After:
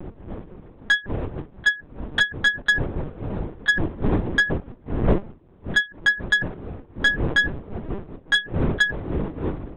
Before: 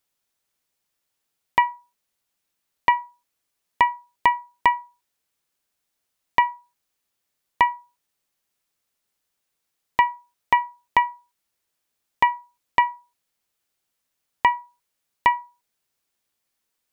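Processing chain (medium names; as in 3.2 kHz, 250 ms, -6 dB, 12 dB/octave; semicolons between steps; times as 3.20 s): wind noise 120 Hz -24 dBFS; bass shelf 96 Hz -10.5 dB; speed mistake 45 rpm record played at 78 rpm; LPC vocoder at 8 kHz pitch kept; saturation -12.5 dBFS, distortion -16 dB; trim +3 dB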